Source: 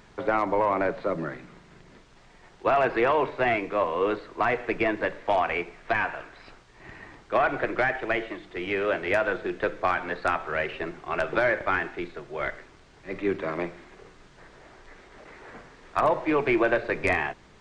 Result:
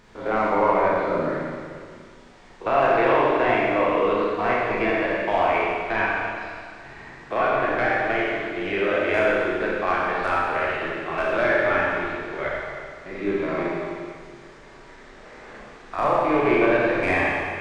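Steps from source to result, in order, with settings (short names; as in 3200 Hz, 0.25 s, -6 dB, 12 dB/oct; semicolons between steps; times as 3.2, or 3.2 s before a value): stepped spectrum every 50 ms; Schroeder reverb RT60 2 s, combs from 29 ms, DRR -4.5 dB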